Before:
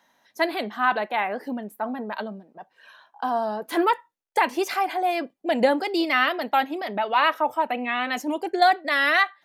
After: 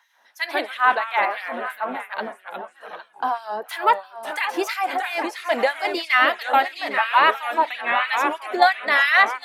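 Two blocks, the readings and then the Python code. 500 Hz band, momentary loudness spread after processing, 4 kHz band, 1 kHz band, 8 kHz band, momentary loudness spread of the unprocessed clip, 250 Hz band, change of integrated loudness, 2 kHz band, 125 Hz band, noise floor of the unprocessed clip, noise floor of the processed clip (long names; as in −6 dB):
−0.5 dB, 14 LU, +2.5 dB, +3.0 dB, +1.5 dB, 11 LU, −6.0 dB, +3.0 dB, +5.0 dB, can't be measured, −69 dBFS, −56 dBFS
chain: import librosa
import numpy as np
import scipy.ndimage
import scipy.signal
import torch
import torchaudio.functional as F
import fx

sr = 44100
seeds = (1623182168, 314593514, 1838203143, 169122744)

p1 = fx.echo_pitch(x, sr, ms=91, semitones=-2, count=3, db_per_echo=-6.0)
p2 = fx.graphic_eq_10(p1, sr, hz=(125, 1000, 2000), db=(-12, 4, 4))
p3 = p2 + fx.echo_single(p2, sr, ms=808, db=-13.5, dry=0)
y = fx.filter_lfo_highpass(p3, sr, shape='sine', hz=3.0, low_hz=260.0, high_hz=2500.0, q=0.89)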